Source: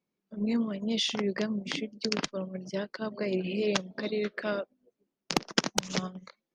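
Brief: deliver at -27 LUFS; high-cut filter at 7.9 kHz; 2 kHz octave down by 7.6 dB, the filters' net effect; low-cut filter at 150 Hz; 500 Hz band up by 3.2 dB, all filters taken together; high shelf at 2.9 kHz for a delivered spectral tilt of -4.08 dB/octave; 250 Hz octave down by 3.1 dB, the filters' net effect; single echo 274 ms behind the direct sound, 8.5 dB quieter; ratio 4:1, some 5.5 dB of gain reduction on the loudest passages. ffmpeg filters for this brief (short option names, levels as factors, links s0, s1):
-af "highpass=150,lowpass=7900,equalizer=f=250:t=o:g=-4,equalizer=f=500:t=o:g=6,equalizer=f=2000:t=o:g=-8,highshelf=f=2900:g=-6,acompressor=threshold=0.0316:ratio=4,aecho=1:1:274:0.376,volume=2.66"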